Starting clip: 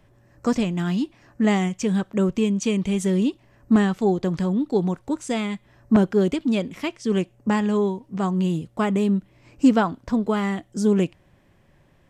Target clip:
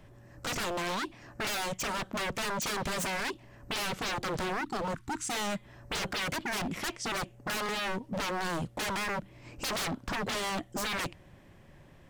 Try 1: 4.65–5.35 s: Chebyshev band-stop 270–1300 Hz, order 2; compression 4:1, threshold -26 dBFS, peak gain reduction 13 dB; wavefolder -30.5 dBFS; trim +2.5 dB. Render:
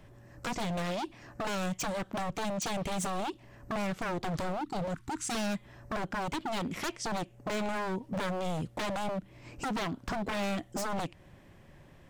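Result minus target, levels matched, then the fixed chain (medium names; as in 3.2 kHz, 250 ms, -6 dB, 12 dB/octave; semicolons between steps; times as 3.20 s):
compression: peak gain reduction +13 dB
4.65–5.35 s: Chebyshev band-stop 270–1300 Hz, order 2; wavefolder -30.5 dBFS; trim +2.5 dB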